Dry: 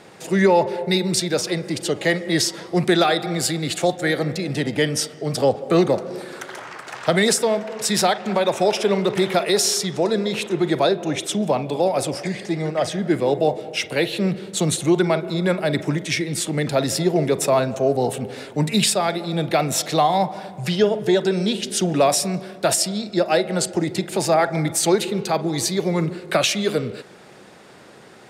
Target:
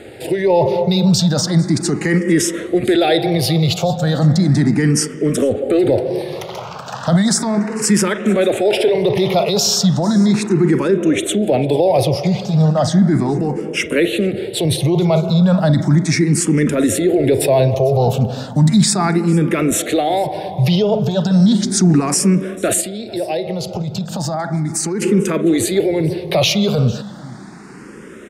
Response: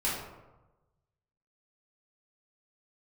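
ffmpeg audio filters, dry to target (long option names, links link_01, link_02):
-filter_complex "[0:a]lowshelf=frequency=370:gain=11,alimiter=limit=-11.5dB:level=0:latency=1:release=11,asettb=1/sr,asplit=3[link_01][link_02][link_03];[link_01]atrim=end=22.804[link_04];[link_02]atrim=start=22.8:end=25.02,asetpts=PTS-STARTPTS,afade=type=in:duration=0.004:curve=qsin,afade=type=out:start_time=2.216:duration=0.004:curve=qsin,acompressor=threshold=-23dB:ratio=6[link_05];[link_03]atrim=start=25.016[link_06];[link_04][link_05]acrossfade=duration=0.004:curve1=hsin:curve2=qsin[link_07];[link_07][link_06]acrossfade=duration=0.004:curve1=qsin:curve2=hsin,aecho=1:1:448:0.0944,asplit=2[link_08][link_09];[link_09]afreqshift=0.35[link_10];[link_08][link_10]amix=inputs=2:normalize=1,volume=7.5dB"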